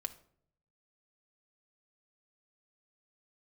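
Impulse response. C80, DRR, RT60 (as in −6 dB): 19.5 dB, 6.0 dB, 0.60 s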